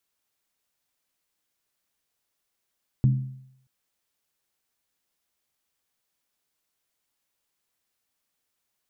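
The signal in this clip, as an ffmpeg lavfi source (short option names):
-f lavfi -i "aevalsrc='0.2*pow(10,-3*t/0.72)*sin(2*PI*131*t)+0.0631*pow(10,-3*t/0.57)*sin(2*PI*208.8*t)+0.02*pow(10,-3*t/0.493)*sin(2*PI*279.8*t)+0.00631*pow(10,-3*t/0.475)*sin(2*PI*300.8*t)+0.002*pow(10,-3*t/0.442)*sin(2*PI*347.5*t)':d=0.63:s=44100"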